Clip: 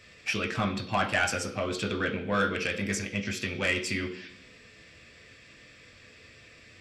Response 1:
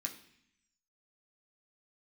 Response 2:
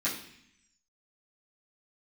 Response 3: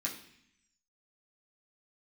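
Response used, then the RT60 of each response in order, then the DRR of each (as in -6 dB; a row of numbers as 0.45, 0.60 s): 1; 0.65, 0.65, 0.65 s; 1.5, -10.0, -3.5 dB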